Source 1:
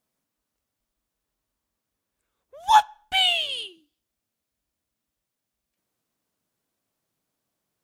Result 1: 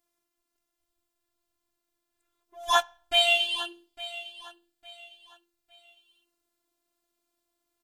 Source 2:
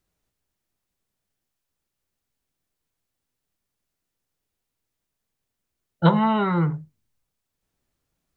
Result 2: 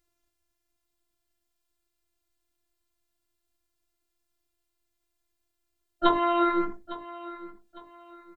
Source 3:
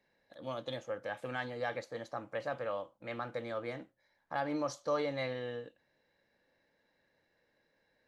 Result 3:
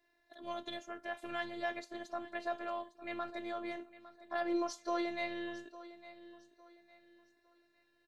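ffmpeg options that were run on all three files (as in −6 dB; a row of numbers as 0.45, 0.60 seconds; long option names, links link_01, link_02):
-af "afftfilt=real='hypot(re,im)*cos(PI*b)':imag='0':win_size=512:overlap=0.75,aecho=1:1:856|1712|2568:0.15|0.0494|0.0163,volume=3.5dB"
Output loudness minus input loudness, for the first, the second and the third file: −4.0, −4.0, −1.5 LU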